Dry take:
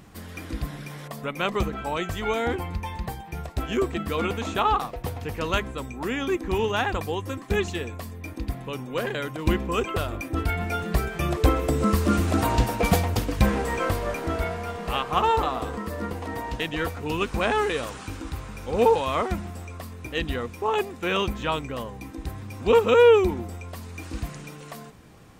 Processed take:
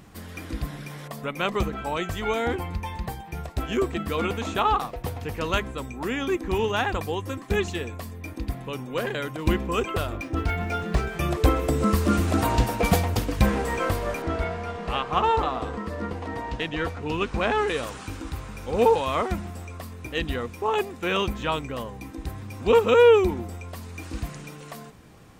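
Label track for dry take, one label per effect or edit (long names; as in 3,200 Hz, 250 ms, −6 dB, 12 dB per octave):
10.130000	11.090000	linearly interpolated sample-rate reduction rate divided by 3×
14.220000	17.680000	high-frequency loss of the air 64 metres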